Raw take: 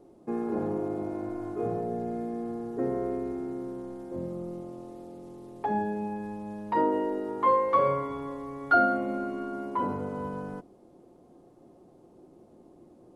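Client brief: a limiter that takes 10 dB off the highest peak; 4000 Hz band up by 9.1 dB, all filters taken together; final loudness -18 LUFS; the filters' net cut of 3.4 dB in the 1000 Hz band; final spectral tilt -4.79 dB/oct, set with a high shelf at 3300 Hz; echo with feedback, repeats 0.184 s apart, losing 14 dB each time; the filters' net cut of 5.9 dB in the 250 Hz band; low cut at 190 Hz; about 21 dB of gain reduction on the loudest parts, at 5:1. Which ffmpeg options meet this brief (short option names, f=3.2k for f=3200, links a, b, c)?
-af "highpass=190,equalizer=f=250:t=o:g=-6.5,equalizer=f=1k:t=o:g=-5.5,highshelf=f=3.3k:g=8.5,equalizer=f=4k:t=o:g=6,acompressor=threshold=-43dB:ratio=5,alimiter=level_in=15dB:limit=-24dB:level=0:latency=1,volume=-15dB,aecho=1:1:184|368:0.2|0.0399,volume=29.5dB"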